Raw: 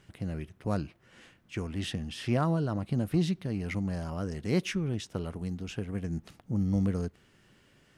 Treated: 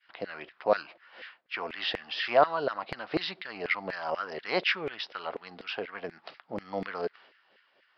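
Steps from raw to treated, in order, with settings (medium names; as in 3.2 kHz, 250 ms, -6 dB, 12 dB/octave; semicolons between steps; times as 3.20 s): resampled via 11.025 kHz; expander -54 dBFS; LFO high-pass saw down 4.1 Hz 480–2000 Hz; trim +7 dB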